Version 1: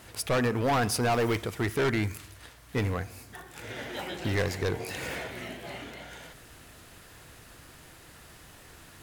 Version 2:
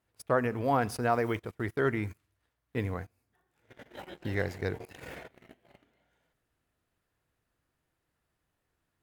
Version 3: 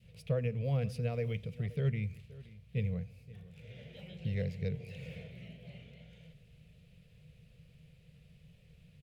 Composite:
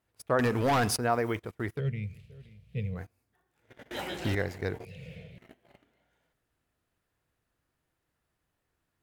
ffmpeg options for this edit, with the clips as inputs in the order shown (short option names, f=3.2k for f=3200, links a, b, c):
-filter_complex "[0:a]asplit=2[a][b];[2:a]asplit=2[c][d];[1:a]asplit=5[e][f][g][h][i];[e]atrim=end=0.392[j];[a]atrim=start=0.388:end=0.962[k];[f]atrim=start=0.958:end=1.81[l];[c]atrim=start=1.75:end=3.01[m];[g]atrim=start=2.95:end=3.912[n];[b]atrim=start=3.908:end=4.352[o];[h]atrim=start=4.348:end=4.852[p];[d]atrim=start=4.848:end=5.382[q];[i]atrim=start=5.378[r];[j][k]acrossfade=d=0.004:c1=hsin:c2=hsin[s];[s][l]acrossfade=d=0.004:c1=hsin:c2=hsin[t];[t][m]acrossfade=d=0.06:c1=tri:c2=tri[u];[u][n]acrossfade=d=0.06:c1=tri:c2=tri[v];[v][o]acrossfade=d=0.004:c1=hsin:c2=hsin[w];[w][p]acrossfade=d=0.004:c1=hsin:c2=hsin[x];[x][q]acrossfade=d=0.004:c1=hsin:c2=hsin[y];[y][r]acrossfade=d=0.004:c1=hsin:c2=hsin"